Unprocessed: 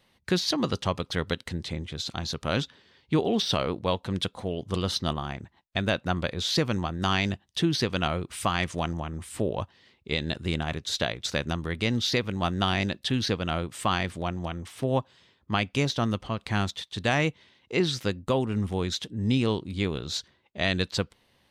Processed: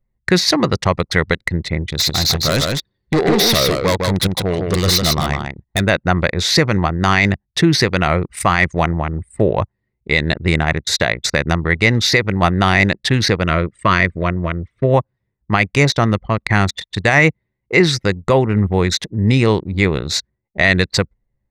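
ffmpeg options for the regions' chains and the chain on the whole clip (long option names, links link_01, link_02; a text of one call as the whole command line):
ffmpeg -i in.wav -filter_complex "[0:a]asettb=1/sr,asplit=3[link_01][link_02][link_03];[link_01]atrim=end=1.864[link_04];[link_02]atrim=start=1.86:end=5.81,asetpts=PTS-STARTPTS,afade=type=in:duration=0.004:curve=qsin,afade=type=out:start_time=3.946:duration=0.004:curve=qsin,highshelf=frequency=2900:width_type=q:width=1.5:gain=6,asoftclip=type=hard:threshold=-24dB,aecho=1:1:154:0.668,atrim=end_sample=174195[link_05];[link_03]atrim=start=5.806[link_06];[link_04][link_05]acrossfade=duration=0.004:curve1=hsin:curve2=qsin[link_07];[link_07][link_06]acrossfade=duration=0.004:curve1=qsin:curve2=hsin,asettb=1/sr,asplit=3[link_08][link_09][link_10];[link_08]atrim=end=13.444[link_11];[link_09]atrim=start=13.44:end=14.94,asetpts=PTS-STARTPTS,afade=type=in:duration=0.004:curve=qsin,afade=type=out:start_time=1.496:duration=0.004:curve=qsin,asuperstop=centerf=800:order=4:qfactor=3.1,highshelf=frequency=10000:gain=-11.5[link_12];[link_10]atrim=start=14.936[link_13];[link_11][link_12]acrossfade=duration=0.004:curve1=hsin:curve2=qsin[link_14];[link_14][link_13]acrossfade=duration=0.004:curve1=qsin:curve2=hsin,anlmdn=3.98,equalizer=frequency=250:width_type=o:width=0.33:gain=-7,equalizer=frequency=2000:width_type=o:width=0.33:gain=10,equalizer=frequency=3150:width_type=o:width=0.33:gain=-11,alimiter=level_in=14.5dB:limit=-1dB:release=50:level=0:latency=1,volume=-1dB" out.wav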